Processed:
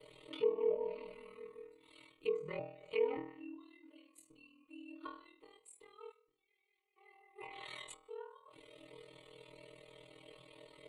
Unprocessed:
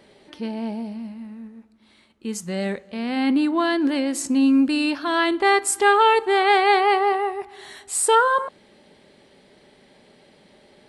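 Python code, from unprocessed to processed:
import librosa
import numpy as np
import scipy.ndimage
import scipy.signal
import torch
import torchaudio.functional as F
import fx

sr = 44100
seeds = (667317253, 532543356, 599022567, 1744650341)

y = fx.gate_flip(x, sr, shuts_db=-17.0, range_db=-33)
y = fx.tone_stack(y, sr, knobs='10-0-1', at=(6.11, 6.96), fade=0.02)
y = fx.stiff_resonator(y, sr, f0_hz=150.0, decay_s=0.58, stiffness=0.002)
y = y * np.sin(2.0 * np.pi * 20.0 * np.arange(len(y)) / sr)
y = fx.env_lowpass_down(y, sr, base_hz=920.0, full_db=-46.0)
y = fx.fixed_phaser(y, sr, hz=1100.0, stages=8)
y = y * librosa.db_to_amplitude(16.5)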